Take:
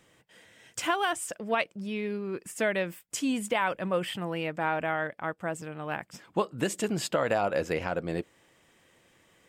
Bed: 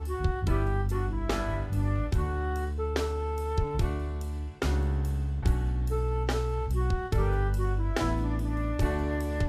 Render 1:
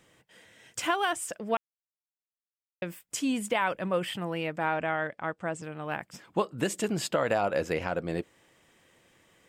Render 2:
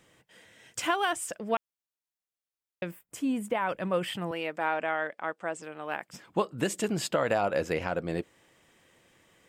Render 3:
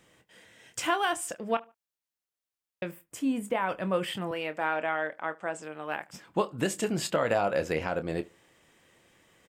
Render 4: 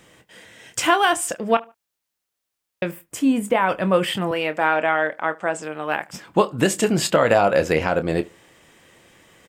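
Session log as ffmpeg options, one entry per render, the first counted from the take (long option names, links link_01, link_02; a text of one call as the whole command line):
ffmpeg -i in.wav -filter_complex "[0:a]asettb=1/sr,asplit=3[link_01][link_02][link_03];[link_01]atrim=end=4.744[link_04];[link_02]atrim=start=4.74:end=5.63,asetpts=PTS-STARTPTS,afade=type=in:duration=0.004:curve=qsin,afade=type=out:start_time=0.886:duration=0.004:curve=qsin,lowpass=frequency=8800:width=0.5412,lowpass=frequency=8800:width=1.3066[link_05];[link_03]atrim=start=5.626[link_06];[link_04][link_05]acrossfade=duration=0.004:curve1=hsin:curve2=qsin[link_07];[link_07][link_06]acrossfade=duration=0.004:curve1=qsin:curve2=hsin,asplit=3[link_08][link_09][link_10];[link_08]atrim=end=1.57,asetpts=PTS-STARTPTS,afade=type=out:start_time=1.566:duration=0.004:curve=hsin[link_11];[link_09]atrim=start=1.57:end=2.82,asetpts=PTS-STARTPTS,volume=0[link_12];[link_10]atrim=start=2.82,asetpts=PTS-STARTPTS,afade=type=in:duration=0.004:curve=hsin[link_13];[link_11][link_12][link_13]concat=n=3:v=0:a=1" out.wav
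ffmpeg -i in.wav -filter_complex "[0:a]asettb=1/sr,asplit=3[link_01][link_02][link_03];[link_01]atrim=end=2.914[link_04];[link_02]atrim=start=2.91:end=3.69,asetpts=PTS-STARTPTS,afade=type=in:duration=0.004:curve=qsin,afade=type=out:start_time=0.776:duration=0.004:curve=qsin,equalizer=frequency=5000:width_type=o:width=2.3:gain=-12.5[link_05];[link_03]atrim=start=3.686[link_06];[link_04][link_05]acrossfade=duration=0.004:curve1=hsin:curve2=qsin[link_07];[link_07][link_06]acrossfade=duration=0.004:curve1=qsin:curve2=hsin,asettb=1/sr,asplit=3[link_08][link_09][link_10];[link_08]atrim=end=4.314[link_11];[link_09]atrim=start=4.31:end=6.09,asetpts=PTS-STARTPTS,afade=type=in:duration=0.004:curve=qsin,afade=type=out:start_time=1.776:duration=0.004:curve=qsin,highpass=310[link_12];[link_10]atrim=start=6.086[link_13];[link_11][link_12]acrossfade=duration=0.004:curve1=hsin:curve2=qsin[link_14];[link_14][link_13]acrossfade=duration=0.004:curve1=qsin:curve2=hsin" out.wav
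ffmpeg -i in.wav -filter_complex "[0:a]asplit=2[link_01][link_02];[link_02]adelay=26,volume=-11.5dB[link_03];[link_01][link_03]amix=inputs=2:normalize=0,asplit=2[link_04][link_05];[link_05]adelay=74,lowpass=frequency=2200:poles=1,volume=-23dB,asplit=2[link_06][link_07];[link_07]adelay=74,lowpass=frequency=2200:poles=1,volume=0.32[link_08];[link_04][link_06][link_08]amix=inputs=3:normalize=0" out.wav
ffmpeg -i in.wav -af "volume=10dB" out.wav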